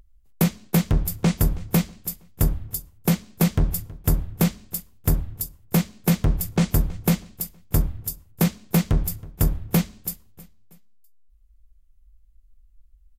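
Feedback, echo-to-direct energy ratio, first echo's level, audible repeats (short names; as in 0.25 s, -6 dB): 44%, -20.0 dB, -21.0 dB, 2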